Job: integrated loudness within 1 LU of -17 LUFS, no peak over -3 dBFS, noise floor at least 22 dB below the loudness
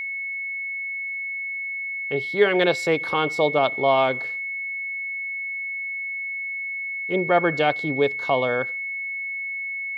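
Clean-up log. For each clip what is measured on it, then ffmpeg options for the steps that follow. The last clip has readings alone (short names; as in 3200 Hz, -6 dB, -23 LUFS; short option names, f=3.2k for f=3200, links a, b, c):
steady tone 2200 Hz; tone level -27 dBFS; loudness -24.0 LUFS; peak -5.0 dBFS; loudness target -17.0 LUFS
-> -af "bandreject=f=2.2k:w=30"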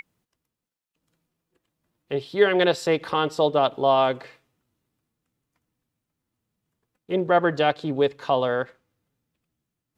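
steady tone none; loudness -22.5 LUFS; peak -5.0 dBFS; loudness target -17.0 LUFS
-> -af "volume=5.5dB,alimiter=limit=-3dB:level=0:latency=1"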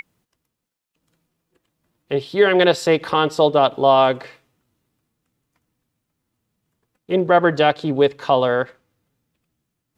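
loudness -17.5 LUFS; peak -3.0 dBFS; noise floor -79 dBFS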